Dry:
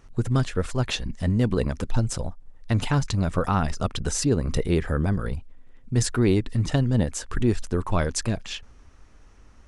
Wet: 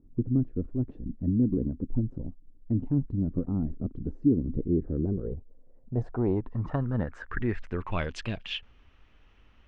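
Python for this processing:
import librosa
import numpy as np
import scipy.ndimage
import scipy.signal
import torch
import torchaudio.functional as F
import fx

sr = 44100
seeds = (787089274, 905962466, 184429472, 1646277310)

y = fx.filter_sweep_lowpass(x, sr, from_hz=290.0, to_hz=3000.0, start_s=4.75, end_s=8.13, q=3.5)
y = y * 10.0 ** (-7.5 / 20.0)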